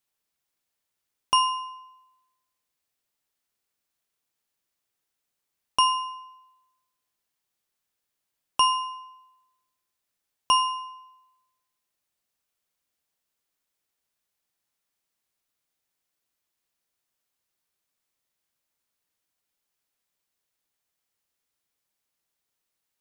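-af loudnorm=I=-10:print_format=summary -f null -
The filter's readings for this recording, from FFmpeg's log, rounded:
Input Integrated:    -25.1 LUFS
Input True Peak:      -8.6 dBTP
Input LRA:             3.0 LU
Input Threshold:     -37.5 LUFS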